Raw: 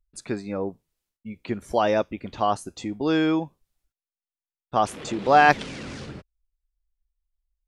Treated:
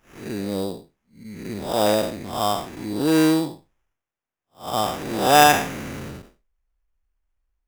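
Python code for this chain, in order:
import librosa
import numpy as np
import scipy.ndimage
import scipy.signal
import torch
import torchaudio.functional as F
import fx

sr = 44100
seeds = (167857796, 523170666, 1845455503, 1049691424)

y = fx.spec_blur(x, sr, span_ms=189.0)
y = fx.sample_hold(y, sr, seeds[0], rate_hz=4300.0, jitter_pct=0)
y = y * librosa.db_to_amplitude(5.5)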